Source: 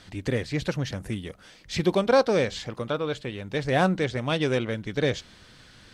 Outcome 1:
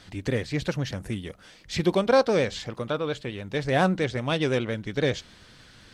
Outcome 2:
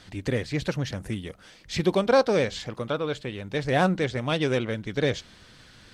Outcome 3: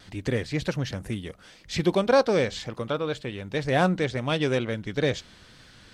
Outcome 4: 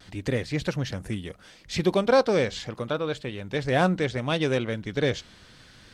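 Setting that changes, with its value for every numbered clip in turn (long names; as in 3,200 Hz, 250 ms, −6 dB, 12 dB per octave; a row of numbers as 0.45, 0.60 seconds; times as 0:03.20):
pitch vibrato, speed: 10, 15, 2, 0.73 Hertz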